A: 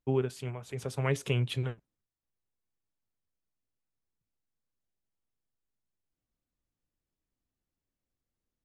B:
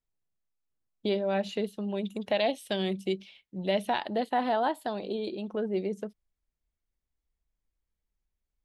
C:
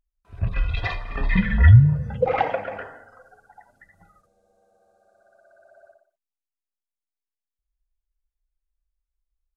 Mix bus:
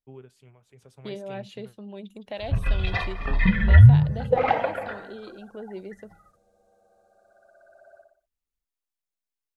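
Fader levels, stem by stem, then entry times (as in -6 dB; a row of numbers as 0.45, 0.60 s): -16.5, -7.5, 0.0 dB; 0.00, 0.00, 2.10 s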